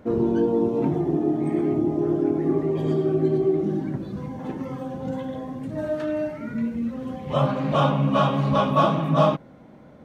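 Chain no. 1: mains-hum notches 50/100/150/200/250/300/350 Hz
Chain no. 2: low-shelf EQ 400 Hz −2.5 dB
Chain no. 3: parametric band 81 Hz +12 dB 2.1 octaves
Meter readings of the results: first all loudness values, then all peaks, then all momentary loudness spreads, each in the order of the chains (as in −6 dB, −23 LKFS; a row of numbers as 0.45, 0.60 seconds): −24.5, −25.0, −20.5 LKFS; −7.0, −7.0, −4.0 dBFS; 11, 12, 11 LU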